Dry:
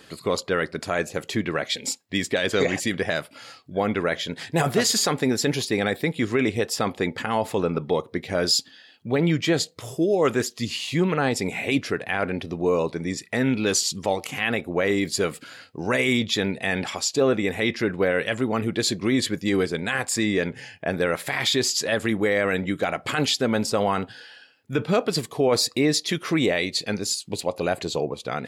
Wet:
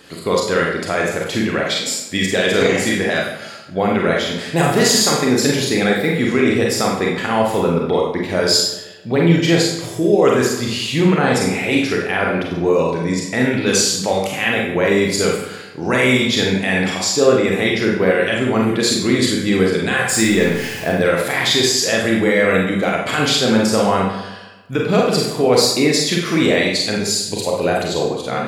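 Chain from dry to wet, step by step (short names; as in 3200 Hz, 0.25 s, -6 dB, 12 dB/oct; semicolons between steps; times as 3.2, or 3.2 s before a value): 20.09–20.89 zero-crossing step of -32 dBFS; dark delay 0.133 s, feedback 49%, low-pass 2100 Hz, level -13 dB; Schroeder reverb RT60 0.59 s, combs from 32 ms, DRR -1.5 dB; gain +3.5 dB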